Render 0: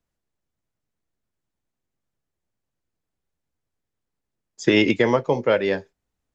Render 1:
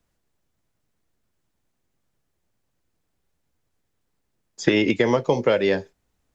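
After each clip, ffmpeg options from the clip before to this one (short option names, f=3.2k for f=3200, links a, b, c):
-filter_complex "[0:a]acrossover=split=740|2900|5800[a][b][c][d];[a]acompressor=threshold=-26dB:ratio=4[e];[b]acompressor=threshold=-37dB:ratio=4[f];[c]acompressor=threshold=-43dB:ratio=4[g];[d]acompressor=threshold=-57dB:ratio=4[h];[e][f][g][h]amix=inputs=4:normalize=0,volume=8dB"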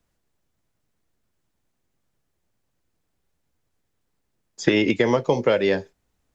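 -af anull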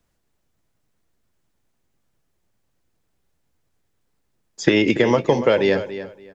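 -filter_complex "[0:a]asplit=2[a][b];[b]adelay=285,lowpass=f=4.8k:p=1,volume=-12.5dB,asplit=2[c][d];[d]adelay=285,lowpass=f=4.8k:p=1,volume=0.21,asplit=2[e][f];[f]adelay=285,lowpass=f=4.8k:p=1,volume=0.21[g];[a][c][e][g]amix=inputs=4:normalize=0,volume=2.5dB"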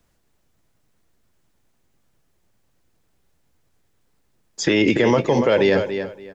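-af "alimiter=level_in=11.5dB:limit=-1dB:release=50:level=0:latency=1,volume=-6.5dB"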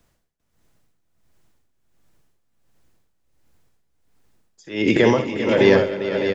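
-filter_complex "[0:a]tremolo=f=1.4:d=0.97,asplit=2[a][b];[b]aecho=0:1:61|196|397|526|611:0.316|0.106|0.266|0.251|0.447[c];[a][c]amix=inputs=2:normalize=0,volume=2dB"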